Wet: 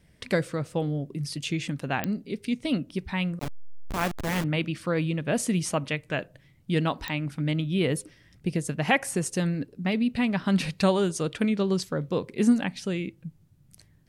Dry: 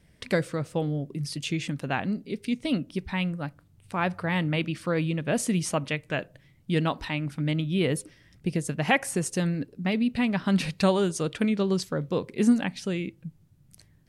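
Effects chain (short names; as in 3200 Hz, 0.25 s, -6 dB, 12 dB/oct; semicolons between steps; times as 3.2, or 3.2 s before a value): 3.39–4.44 level-crossing sampler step -25 dBFS; pops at 2.04/7.08, -12 dBFS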